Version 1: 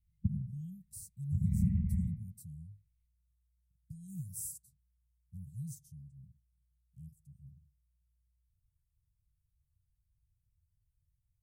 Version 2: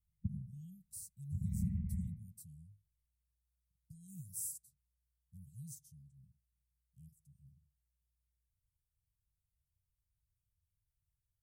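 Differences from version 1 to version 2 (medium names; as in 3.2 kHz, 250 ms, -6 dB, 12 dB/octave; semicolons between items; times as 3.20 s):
speech: add bass shelf 400 Hz -9 dB; background -6.5 dB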